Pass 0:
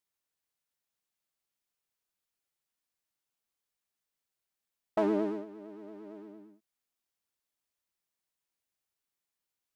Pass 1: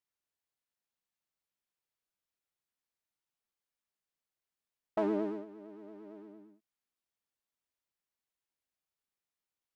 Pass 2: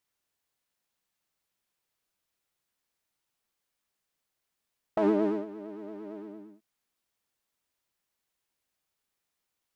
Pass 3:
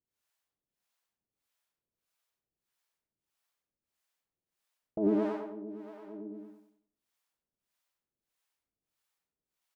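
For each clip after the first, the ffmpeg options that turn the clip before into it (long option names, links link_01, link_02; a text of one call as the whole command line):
ffmpeg -i in.wav -af "highshelf=frequency=4600:gain=-5.5,volume=-3dB" out.wav
ffmpeg -i in.wav -af "alimiter=level_in=1dB:limit=-24dB:level=0:latency=1:release=42,volume=-1dB,volume=8.5dB" out.wav
ffmpeg -i in.wav -filter_complex "[0:a]acrossover=split=530[link_01][link_02];[link_01]aeval=exprs='val(0)*(1-1/2+1/2*cos(2*PI*1.6*n/s))':channel_layout=same[link_03];[link_02]aeval=exprs='val(0)*(1-1/2-1/2*cos(2*PI*1.6*n/s))':channel_layout=same[link_04];[link_03][link_04]amix=inputs=2:normalize=0,asplit=2[link_05][link_06];[link_06]adelay=92,lowpass=frequency=1400:poles=1,volume=-3.5dB,asplit=2[link_07][link_08];[link_08]adelay=92,lowpass=frequency=1400:poles=1,volume=0.4,asplit=2[link_09][link_10];[link_10]adelay=92,lowpass=frequency=1400:poles=1,volume=0.4,asplit=2[link_11][link_12];[link_12]adelay=92,lowpass=frequency=1400:poles=1,volume=0.4,asplit=2[link_13][link_14];[link_14]adelay=92,lowpass=frequency=1400:poles=1,volume=0.4[link_15];[link_05][link_07][link_09][link_11][link_13][link_15]amix=inputs=6:normalize=0" out.wav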